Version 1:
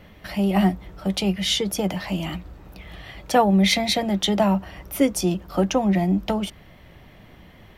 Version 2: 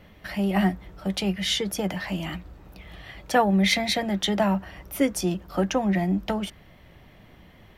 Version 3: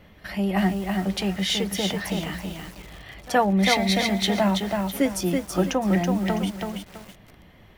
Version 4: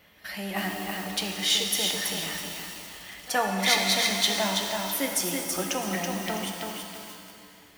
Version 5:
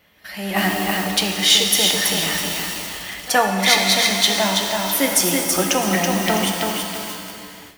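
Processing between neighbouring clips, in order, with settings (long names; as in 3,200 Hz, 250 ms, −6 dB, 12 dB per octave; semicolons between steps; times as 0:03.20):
dynamic equaliser 1,700 Hz, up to +7 dB, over −46 dBFS, Q 2.4; level −3.5 dB
backwards echo 71 ms −23.5 dB; feedback echo at a low word length 328 ms, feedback 35%, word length 7 bits, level −3.5 dB
spectral tilt +3 dB per octave; reverb with rising layers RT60 2.3 s, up +7 semitones, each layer −8 dB, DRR 3 dB; level −5 dB
automatic gain control gain up to 13 dB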